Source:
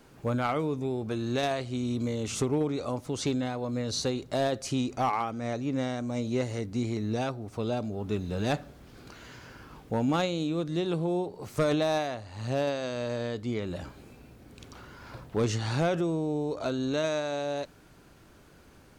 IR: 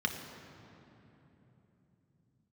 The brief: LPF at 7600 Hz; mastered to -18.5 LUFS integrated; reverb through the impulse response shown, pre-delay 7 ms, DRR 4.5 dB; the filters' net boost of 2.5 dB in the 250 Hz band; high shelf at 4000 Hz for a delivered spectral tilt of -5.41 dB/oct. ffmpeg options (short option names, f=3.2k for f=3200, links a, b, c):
-filter_complex "[0:a]lowpass=7.6k,equalizer=f=250:t=o:g=3,highshelf=f=4k:g=5.5,asplit=2[a][b];[1:a]atrim=start_sample=2205,adelay=7[c];[b][c]afir=irnorm=-1:irlink=0,volume=-11dB[d];[a][d]amix=inputs=2:normalize=0,volume=9.5dB"